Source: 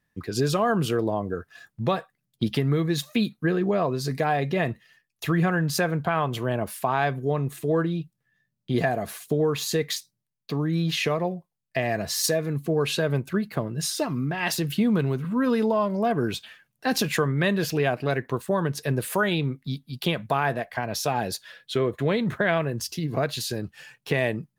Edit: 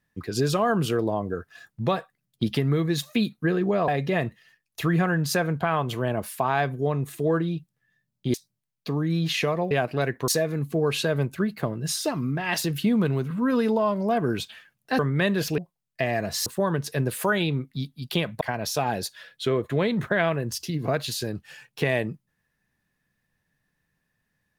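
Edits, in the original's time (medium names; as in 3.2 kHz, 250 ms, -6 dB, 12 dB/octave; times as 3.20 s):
3.88–4.32 s: delete
8.78–9.97 s: delete
11.34–12.22 s: swap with 17.80–18.37 s
16.93–17.21 s: delete
20.32–20.70 s: delete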